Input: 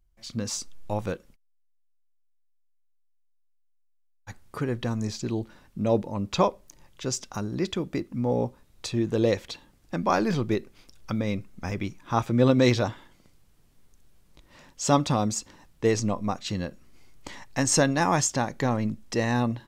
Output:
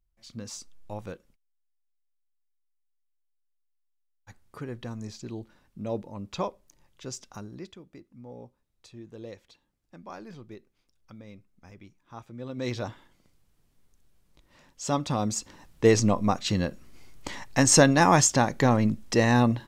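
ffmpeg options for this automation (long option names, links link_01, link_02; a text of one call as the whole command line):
ffmpeg -i in.wav -af "volume=14.5dB,afade=type=out:start_time=7.35:duration=0.43:silence=0.298538,afade=type=in:start_time=12.49:duration=0.42:silence=0.223872,afade=type=in:start_time=15:duration=0.91:silence=0.316228" out.wav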